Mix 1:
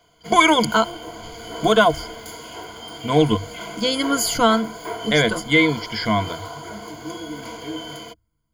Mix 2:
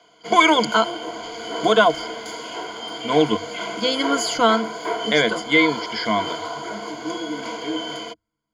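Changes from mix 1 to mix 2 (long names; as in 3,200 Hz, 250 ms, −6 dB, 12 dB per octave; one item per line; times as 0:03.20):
background +5.0 dB
master: add three-way crossover with the lows and the highs turned down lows −19 dB, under 190 Hz, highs −21 dB, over 7,600 Hz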